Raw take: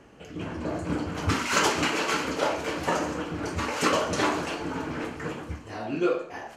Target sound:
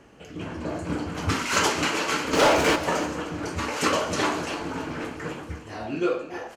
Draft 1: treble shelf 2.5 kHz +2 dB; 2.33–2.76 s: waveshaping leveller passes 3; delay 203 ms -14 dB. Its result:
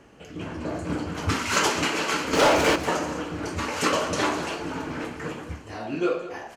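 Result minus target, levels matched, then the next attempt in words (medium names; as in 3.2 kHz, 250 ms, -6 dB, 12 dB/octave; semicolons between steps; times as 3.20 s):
echo 103 ms early
treble shelf 2.5 kHz +2 dB; 2.33–2.76 s: waveshaping leveller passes 3; delay 306 ms -14 dB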